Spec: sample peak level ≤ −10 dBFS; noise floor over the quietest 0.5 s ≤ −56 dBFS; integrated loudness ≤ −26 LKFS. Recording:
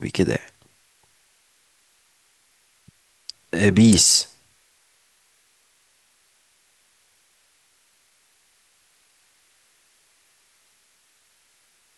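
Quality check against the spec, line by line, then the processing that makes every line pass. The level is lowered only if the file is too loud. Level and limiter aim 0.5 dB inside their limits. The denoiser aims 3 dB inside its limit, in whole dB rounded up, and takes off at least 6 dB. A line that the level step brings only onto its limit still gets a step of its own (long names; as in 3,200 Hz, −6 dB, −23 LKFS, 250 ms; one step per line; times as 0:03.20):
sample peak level −5.0 dBFS: out of spec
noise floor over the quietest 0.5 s −62 dBFS: in spec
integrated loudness −17.5 LKFS: out of spec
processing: level −9 dB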